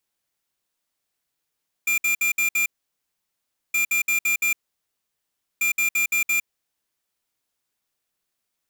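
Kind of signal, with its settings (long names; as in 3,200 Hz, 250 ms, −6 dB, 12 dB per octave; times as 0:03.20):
beeps in groups square 2,390 Hz, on 0.11 s, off 0.06 s, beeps 5, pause 1.08 s, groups 3, −21 dBFS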